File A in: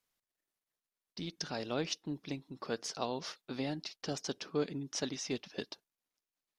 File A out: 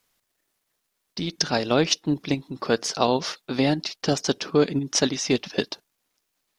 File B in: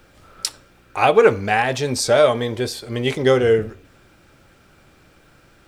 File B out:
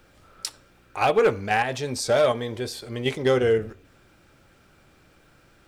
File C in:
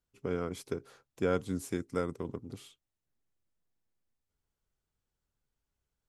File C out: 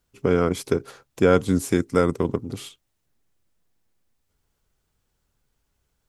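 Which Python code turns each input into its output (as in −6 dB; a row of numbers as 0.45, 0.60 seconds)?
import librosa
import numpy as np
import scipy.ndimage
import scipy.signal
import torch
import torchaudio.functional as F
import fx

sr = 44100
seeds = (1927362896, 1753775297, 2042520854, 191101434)

p1 = fx.level_steps(x, sr, step_db=19)
p2 = x + (p1 * librosa.db_to_amplitude(-1.0))
p3 = np.clip(p2, -10.0 ** (-4.5 / 20.0), 10.0 ** (-4.5 / 20.0))
y = p3 * 10.0 ** (-26 / 20.0) / np.sqrt(np.mean(np.square(p3)))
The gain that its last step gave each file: +11.5, −8.0, +10.5 decibels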